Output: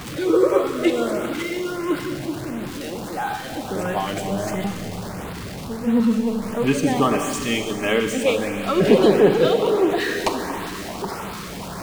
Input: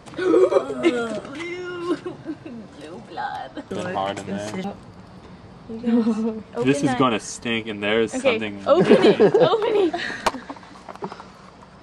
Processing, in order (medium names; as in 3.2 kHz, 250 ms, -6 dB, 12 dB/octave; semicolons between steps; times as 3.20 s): jump at every zero crossing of -27.5 dBFS; Schroeder reverb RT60 3 s, combs from 30 ms, DRR 5 dB; LFO notch saw up 1.5 Hz 500–6700 Hz; trim -1 dB